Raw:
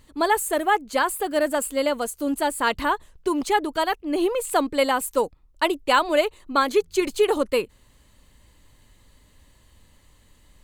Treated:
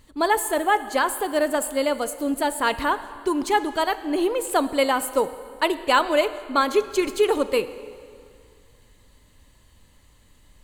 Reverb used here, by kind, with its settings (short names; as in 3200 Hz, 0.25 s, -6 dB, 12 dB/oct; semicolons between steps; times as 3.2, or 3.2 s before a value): plate-style reverb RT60 2.3 s, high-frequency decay 0.8×, DRR 12.5 dB